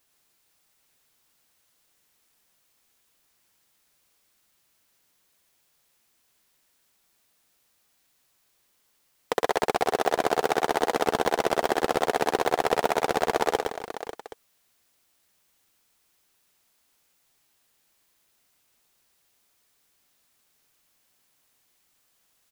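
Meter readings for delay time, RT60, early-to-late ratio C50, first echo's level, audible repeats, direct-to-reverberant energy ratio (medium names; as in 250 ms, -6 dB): 113 ms, no reverb, no reverb, -4.0 dB, 4, no reverb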